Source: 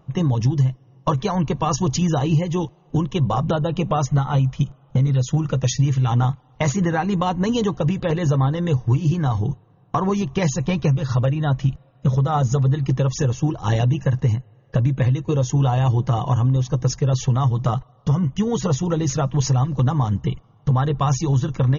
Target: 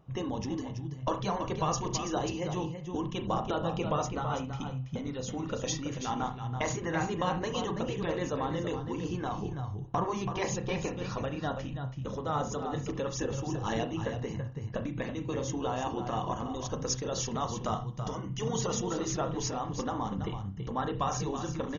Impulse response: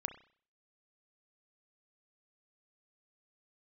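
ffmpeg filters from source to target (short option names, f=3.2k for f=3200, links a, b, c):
-filter_complex "[0:a]asettb=1/sr,asplit=3[a][b][c];[a]atrim=end=16.514[d];[b]atrim=start=16.51:end=18.83,asetpts=PTS-STARTPTS,afade=t=in:d=0.004:c=qsin,afade=t=out:st=2.316:d=0.004:c=qsin,highshelf=f=4.7k:g=8.5[e];[c]atrim=start=18.826[f];[d][e]acrossfade=d=0.004:c1=hsin:c2=qsin[g];[g][f]acrossfade=d=0.004:c1=qsin:c2=hsin,aecho=1:1:330:0.355[h];[1:a]atrim=start_sample=2205,atrim=end_sample=4410[i];[h][i]afir=irnorm=-1:irlink=0,afftfilt=real='re*lt(hypot(re,im),0.708)':imag='im*lt(hypot(re,im),0.708)':win_size=1024:overlap=0.75,volume=-6.5dB"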